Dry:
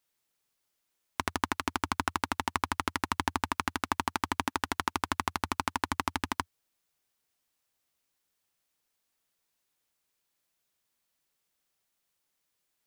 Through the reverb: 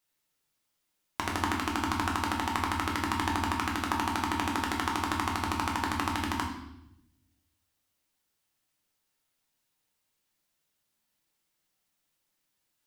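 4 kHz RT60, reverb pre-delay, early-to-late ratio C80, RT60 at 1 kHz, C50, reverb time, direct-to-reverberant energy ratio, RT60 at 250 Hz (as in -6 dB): 0.80 s, 5 ms, 8.5 dB, 0.75 s, 5.5 dB, 0.85 s, -1.0 dB, 1.3 s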